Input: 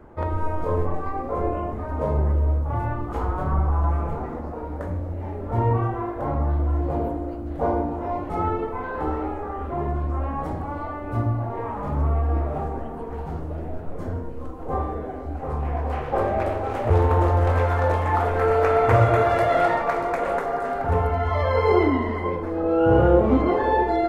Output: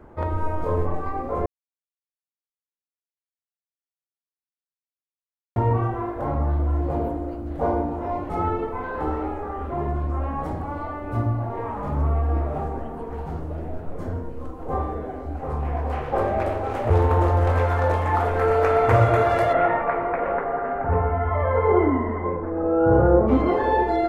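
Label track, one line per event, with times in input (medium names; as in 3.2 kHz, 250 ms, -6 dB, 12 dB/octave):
1.460000	5.560000	mute
19.520000	23.270000	low-pass 2.6 kHz -> 1.6 kHz 24 dB/octave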